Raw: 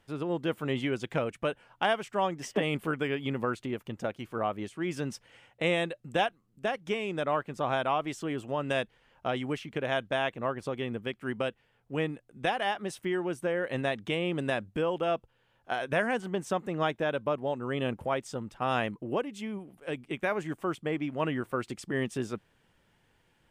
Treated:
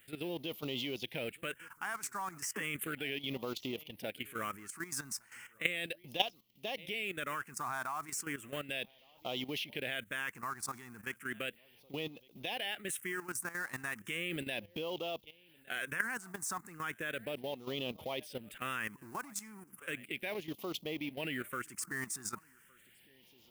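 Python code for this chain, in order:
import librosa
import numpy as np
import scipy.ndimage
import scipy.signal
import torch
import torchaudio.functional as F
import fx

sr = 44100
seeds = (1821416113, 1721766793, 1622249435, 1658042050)

p1 = fx.law_mismatch(x, sr, coded='mu')
p2 = p1 + fx.echo_single(p1, sr, ms=1161, db=-23.5, dry=0)
p3 = fx.phaser_stages(p2, sr, stages=4, low_hz=510.0, high_hz=1600.0, hz=0.35, feedback_pct=20)
p4 = fx.tilt_eq(p3, sr, slope=3.5)
p5 = fx.level_steps(p4, sr, step_db=13)
y = p5 * librosa.db_to_amplitude(1.0)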